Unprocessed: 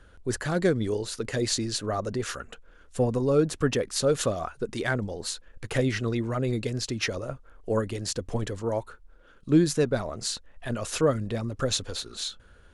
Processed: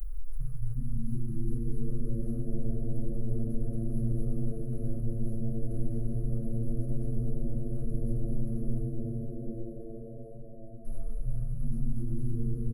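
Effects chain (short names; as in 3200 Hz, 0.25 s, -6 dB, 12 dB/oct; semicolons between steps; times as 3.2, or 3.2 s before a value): per-bin compression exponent 0.2; 8.82–10.85 gate -11 dBFS, range -18 dB; inverse Chebyshev band-stop 140–8000 Hz, stop band 60 dB; comb 4.7 ms, depth 52%; small resonant body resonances 430/1200/3100 Hz, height 11 dB, ringing for 30 ms; frequency-shifting echo 0.371 s, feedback 55%, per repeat +110 Hz, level -9 dB; reverb RT60 5.2 s, pre-delay 3 ms, DRR 4.5 dB; gain +4.5 dB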